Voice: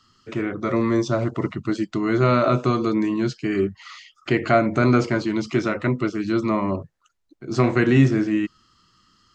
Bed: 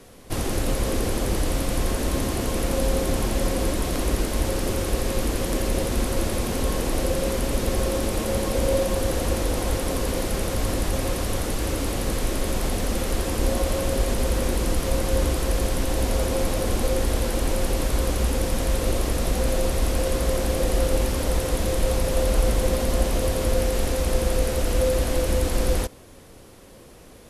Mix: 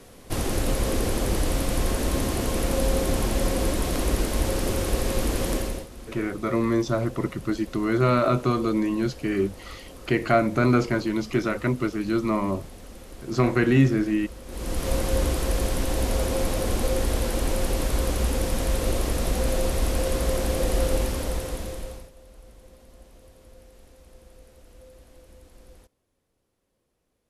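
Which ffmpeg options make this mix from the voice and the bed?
-filter_complex "[0:a]adelay=5800,volume=-2.5dB[a];[1:a]volume=16.5dB,afade=t=out:st=5.51:d=0.36:silence=0.125893,afade=t=in:st=14.46:d=0.45:silence=0.141254,afade=t=out:st=20.91:d=1.2:silence=0.0446684[b];[a][b]amix=inputs=2:normalize=0"

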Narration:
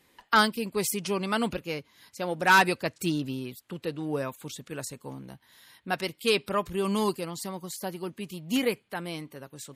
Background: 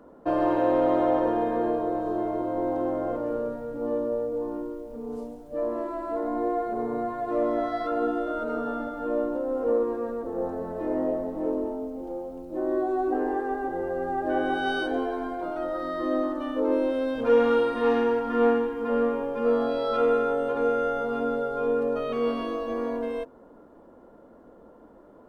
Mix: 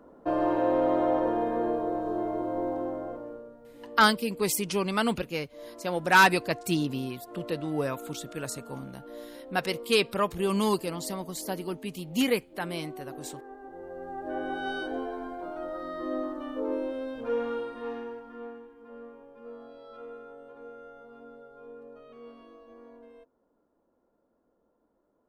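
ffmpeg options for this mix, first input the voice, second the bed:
-filter_complex "[0:a]adelay=3650,volume=1dB[a];[1:a]volume=8dB,afade=t=out:st=2.56:d=0.89:silence=0.199526,afade=t=in:st=13.59:d=1.07:silence=0.298538,afade=t=out:st=16.54:d=1.95:silence=0.16788[b];[a][b]amix=inputs=2:normalize=0"

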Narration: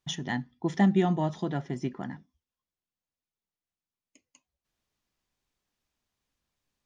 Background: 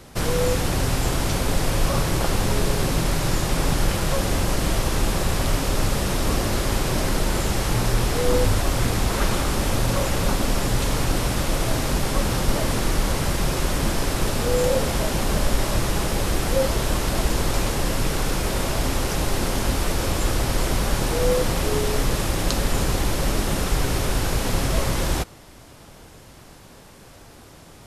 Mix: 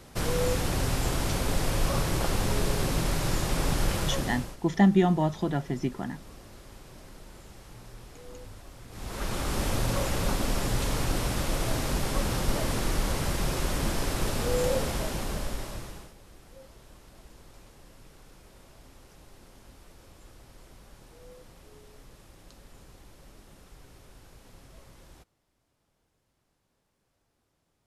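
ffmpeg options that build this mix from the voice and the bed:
-filter_complex "[0:a]adelay=4000,volume=2.5dB[a];[1:a]volume=14.5dB,afade=t=out:st=4.01:d=0.56:silence=0.0944061,afade=t=in:st=8.89:d=0.7:silence=0.1,afade=t=out:st=14.71:d=1.43:silence=0.0630957[b];[a][b]amix=inputs=2:normalize=0"

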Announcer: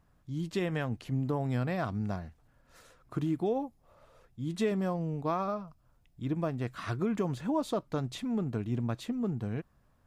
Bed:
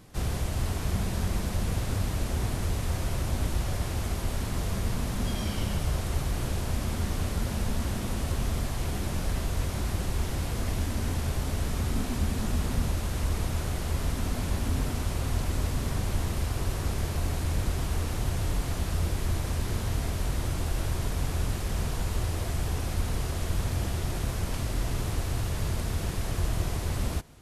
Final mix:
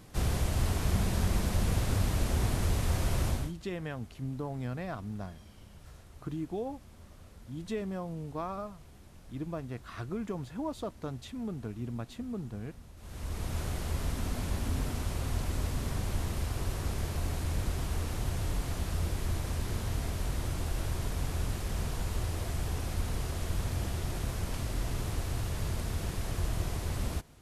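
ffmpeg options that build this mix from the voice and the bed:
-filter_complex "[0:a]adelay=3100,volume=-5.5dB[a];[1:a]volume=19.5dB,afade=t=out:st=3.27:d=0.26:silence=0.0668344,afade=t=in:st=12.96:d=0.64:silence=0.105925[b];[a][b]amix=inputs=2:normalize=0"

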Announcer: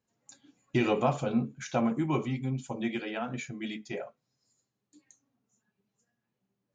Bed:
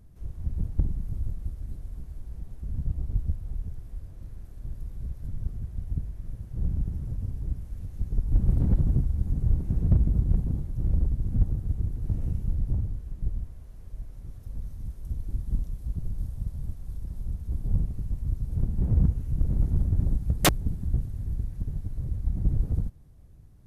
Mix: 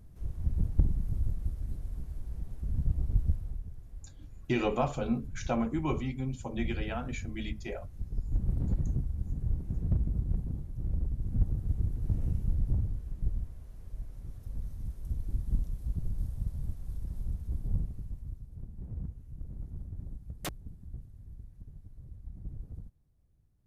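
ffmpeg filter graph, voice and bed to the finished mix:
-filter_complex "[0:a]adelay=3750,volume=-2.5dB[a];[1:a]volume=5.5dB,afade=t=out:st=3.34:d=0.28:silence=0.421697,afade=t=in:st=11.03:d=0.77:silence=0.530884,afade=t=out:st=17.2:d=1.3:silence=0.177828[b];[a][b]amix=inputs=2:normalize=0"

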